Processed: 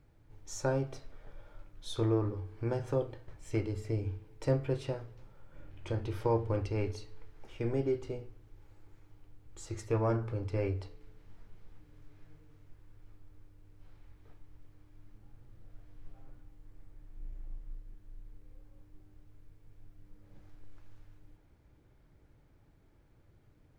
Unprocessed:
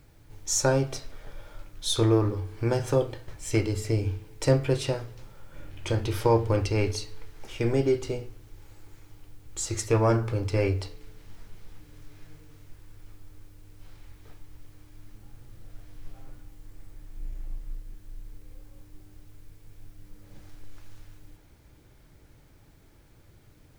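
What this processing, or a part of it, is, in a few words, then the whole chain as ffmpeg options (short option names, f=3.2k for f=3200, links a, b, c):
through cloth: -af "highshelf=f=3.1k:g=-12.5,volume=-7.5dB"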